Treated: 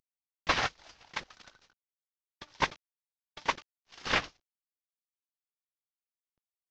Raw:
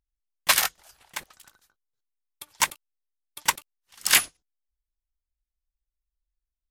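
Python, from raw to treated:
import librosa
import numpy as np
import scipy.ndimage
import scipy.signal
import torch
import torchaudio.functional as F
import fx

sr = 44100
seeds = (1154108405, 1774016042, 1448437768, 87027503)

y = fx.cvsd(x, sr, bps=32000)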